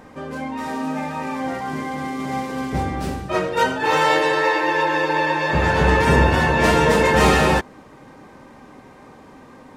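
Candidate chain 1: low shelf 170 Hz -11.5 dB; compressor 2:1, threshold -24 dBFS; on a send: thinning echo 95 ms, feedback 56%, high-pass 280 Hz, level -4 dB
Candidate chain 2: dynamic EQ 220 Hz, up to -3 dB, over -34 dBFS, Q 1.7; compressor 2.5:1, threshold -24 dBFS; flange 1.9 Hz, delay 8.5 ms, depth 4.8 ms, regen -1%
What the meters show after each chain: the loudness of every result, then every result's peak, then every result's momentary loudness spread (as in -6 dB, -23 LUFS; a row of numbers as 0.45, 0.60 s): -23.5, -28.5 LUFS; -10.0, -14.0 dBFS; 9, 21 LU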